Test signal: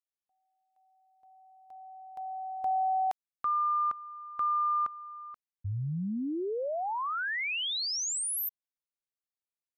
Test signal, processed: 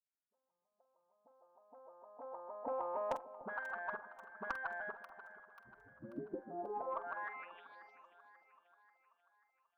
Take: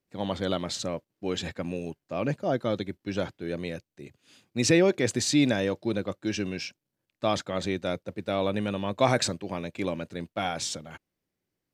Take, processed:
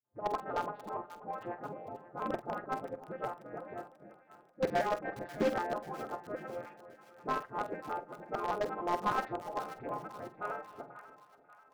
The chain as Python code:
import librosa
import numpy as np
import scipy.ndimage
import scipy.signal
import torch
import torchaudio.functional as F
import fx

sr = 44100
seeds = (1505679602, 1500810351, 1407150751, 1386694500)

p1 = fx.vocoder_arp(x, sr, chord='minor triad', root=53, every_ms=154)
p2 = scipy.signal.sosfilt(scipy.signal.butter(4, 1200.0, 'lowpass', fs=sr, output='sos'), p1)
p3 = fx.spec_gate(p2, sr, threshold_db=-15, keep='weak')
p4 = fx.low_shelf(p3, sr, hz=490.0, db=-7.0)
p5 = fx.dispersion(p4, sr, late='highs', ms=42.0, hz=400.0)
p6 = fx.cheby_harmonics(p5, sr, harmonics=(5, 7, 8), levels_db=(-16, -40, -32), full_scale_db=-29.5)
p7 = fx.quant_dither(p6, sr, seeds[0], bits=6, dither='none')
p8 = p6 + F.gain(torch.from_numpy(p7), -6.5).numpy()
p9 = fx.doubler(p8, sr, ms=47.0, db=-13.0)
p10 = p9 + fx.echo_split(p9, sr, split_hz=810.0, low_ms=296, high_ms=537, feedback_pct=52, wet_db=-14.5, dry=0)
p11 = fx.slew_limit(p10, sr, full_power_hz=28.0)
y = F.gain(torch.from_numpy(p11), 8.0).numpy()